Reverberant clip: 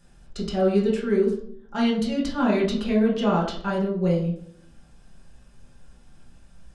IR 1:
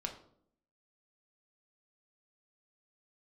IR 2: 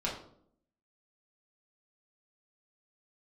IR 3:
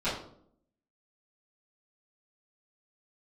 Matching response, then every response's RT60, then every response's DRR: 2; 0.65, 0.65, 0.65 s; 2.0, -5.5, -15.0 dB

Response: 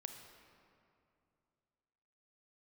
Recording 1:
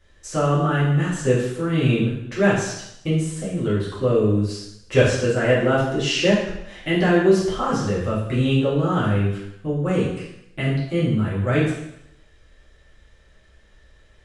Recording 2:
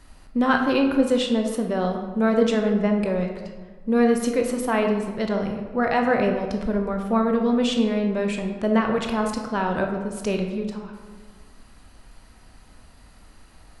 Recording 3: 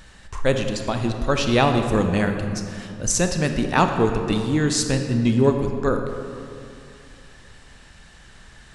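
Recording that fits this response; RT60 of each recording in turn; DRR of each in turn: 3; 0.80, 1.5, 2.6 s; -10.0, 3.0, 5.0 dB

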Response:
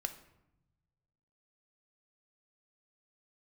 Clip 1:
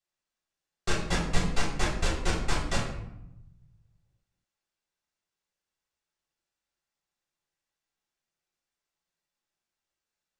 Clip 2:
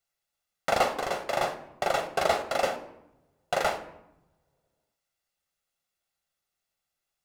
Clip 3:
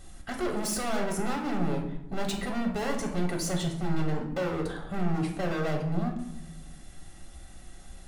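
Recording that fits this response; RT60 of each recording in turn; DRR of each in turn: 2; 0.85, 0.90, 0.85 s; -6.5, 7.0, 0.5 dB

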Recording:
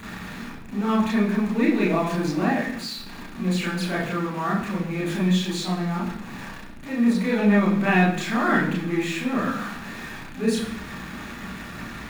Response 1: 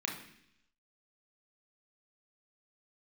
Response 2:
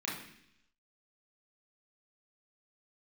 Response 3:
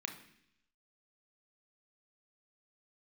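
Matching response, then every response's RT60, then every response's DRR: 2; 0.70, 0.70, 0.70 s; -0.5, -6.0, 4.0 dB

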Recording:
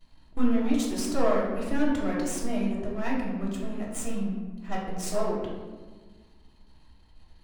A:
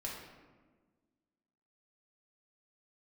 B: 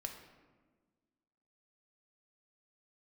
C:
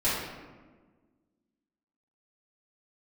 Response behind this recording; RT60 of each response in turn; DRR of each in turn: A; 1.4, 1.4, 1.4 s; -4.0, 3.5, -12.5 dB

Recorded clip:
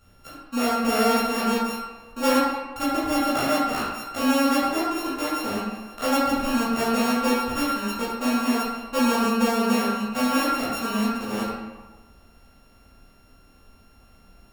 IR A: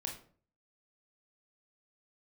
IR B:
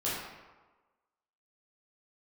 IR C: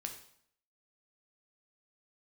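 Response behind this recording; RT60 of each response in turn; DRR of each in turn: B; 0.45, 1.3, 0.65 s; 1.0, -9.0, 3.5 dB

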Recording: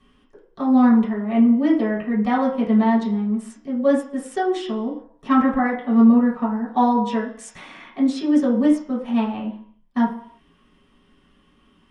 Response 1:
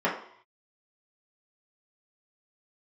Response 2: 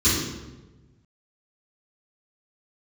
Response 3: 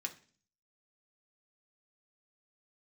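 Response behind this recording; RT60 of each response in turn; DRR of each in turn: 1; 0.65, 1.2, 0.40 s; -7.5, -13.5, 2.0 dB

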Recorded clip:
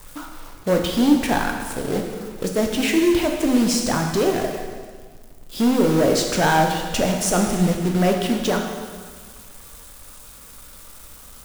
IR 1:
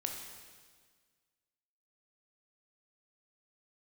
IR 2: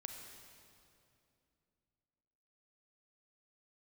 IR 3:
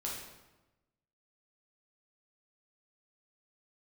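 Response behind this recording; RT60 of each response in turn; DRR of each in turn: 1; 1.6, 2.7, 1.1 s; 2.0, 3.5, -4.5 dB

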